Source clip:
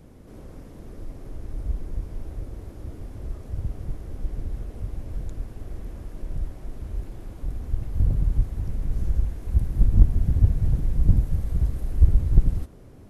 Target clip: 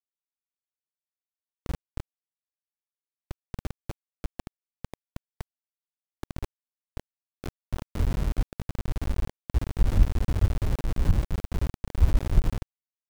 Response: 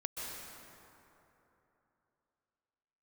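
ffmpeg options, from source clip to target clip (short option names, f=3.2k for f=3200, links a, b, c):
-af "adynamicsmooth=sensitivity=7:basefreq=690,aeval=exprs='val(0)*gte(abs(val(0)),0.0841)':c=same,volume=-4.5dB"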